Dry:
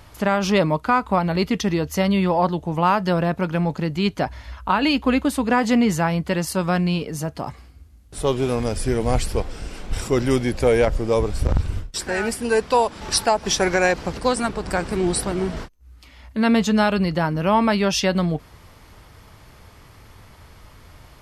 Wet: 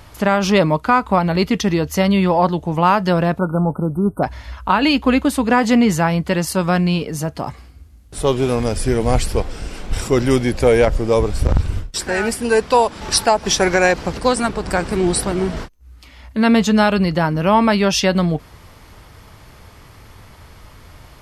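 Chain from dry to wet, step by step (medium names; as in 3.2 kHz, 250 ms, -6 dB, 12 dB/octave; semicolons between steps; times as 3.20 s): spectral selection erased 3.39–4.23 s, 1.5–8.1 kHz; trim +4 dB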